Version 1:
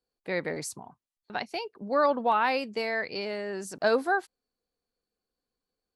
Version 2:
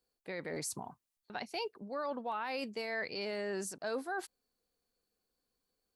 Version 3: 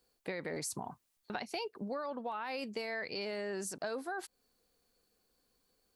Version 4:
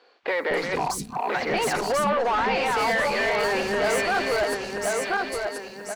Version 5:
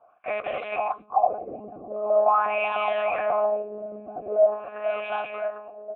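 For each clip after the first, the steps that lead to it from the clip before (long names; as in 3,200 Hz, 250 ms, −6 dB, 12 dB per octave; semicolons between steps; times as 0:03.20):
high-shelf EQ 6,400 Hz +6.5 dB; reversed playback; downward compressor 6 to 1, threshold −35 dBFS, peak gain reduction 15 dB; reversed playback; brickwall limiter −29.5 dBFS, peak gain reduction 5.5 dB; level +1 dB
downward compressor 10 to 1, threshold −44 dBFS, peak gain reduction 11.5 dB; level +8.5 dB
feedback delay that plays each chunk backwards 517 ms, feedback 53%, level −1.5 dB; mid-hump overdrive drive 25 dB, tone 2,700 Hz, clips at −22.5 dBFS; three-band delay without the direct sound mids, lows, highs 230/280 ms, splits 280/4,300 Hz; level +7.5 dB
one-pitch LPC vocoder at 8 kHz 210 Hz; auto-filter low-pass sine 0.44 Hz 270–3,100 Hz; formant filter a; level +7.5 dB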